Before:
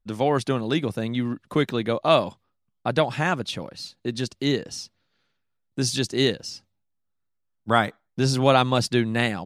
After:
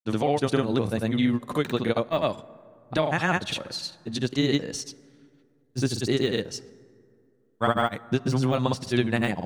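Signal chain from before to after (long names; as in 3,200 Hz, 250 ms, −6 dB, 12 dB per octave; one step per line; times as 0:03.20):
de-essing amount 65%
notch filter 5,100 Hz, Q 11
downward compressor, threshold −23 dBFS, peak gain reduction 9.5 dB
granular cloud, spray 100 ms, pitch spread up and down by 0 semitones
dense smooth reverb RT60 2.6 s, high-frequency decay 0.4×, DRR 19.5 dB
level +5 dB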